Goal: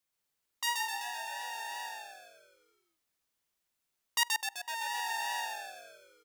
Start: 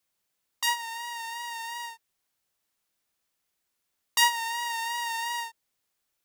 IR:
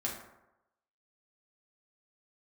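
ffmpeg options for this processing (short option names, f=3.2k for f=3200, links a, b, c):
-filter_complex "[0:a]asettb=1/sr,asplit=3[a][b][c];[a]atrim=end=4.234[d];[b]atrim=start=4.23:end=4.68,asetpts=PTS-STARTPTS,afade=t=in:d=0.004:c=qsin,afade=t=out:st=0.446:d=0.004:c=qsin,agate=range=-27dB:threshold=-17dB:ratio=16:detection=peak[e];[c]atrim=start=4.676[f];[d][e]acrossfade=d=0.004:c1=hsin:c2=qsin[g];[g][f]acrossfade=d=0.004:c1=qsin:c2=hsin,asplit=9[h][i][j][k][l][m][n][o][p];[i]adelay=128,afreqshift=-74,volume=-3dB[q];[j]adelay=256,afreqshift=-148,volume=-8dB[r];[k]adelay=384,afreqshift=-222,volume=-13.1dB[s];[l]adelay=512,afreqshift=-296,volume=-18.1dB[t];[m]adelay=640,afreqshift=-370,volume=-23.1dB[u];[n]adelay=768,afreqshift=-444,volume=-28.2dB[v];[o]adelay=896,afreqshift=-518,volume=-33.2dB[w];[p]adelay=1024,afreqshift=-592,volume=-38.3dB[x];[h][q][r][s][t][u][v][w][x]amix=inputs=9:normalize=0,volume=-6dB"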